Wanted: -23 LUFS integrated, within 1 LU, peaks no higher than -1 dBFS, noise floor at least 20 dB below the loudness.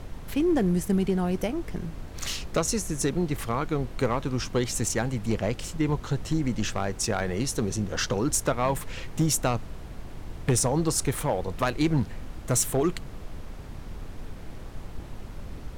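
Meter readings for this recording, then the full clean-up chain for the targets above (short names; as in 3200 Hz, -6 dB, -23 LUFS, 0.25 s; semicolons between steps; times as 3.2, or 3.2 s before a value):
clipped 0.5%; flat tops at -16.5 dBFS; noise floor -40 dBFS; noise floor target -48 dBFS; loudness -27.5 LUFS; peak -16.5 dBFS; loudness target -23.0 LUFS
-> clip repair -16.5 dBFS; noise print and reduce 8 dB; gain +4.5 dB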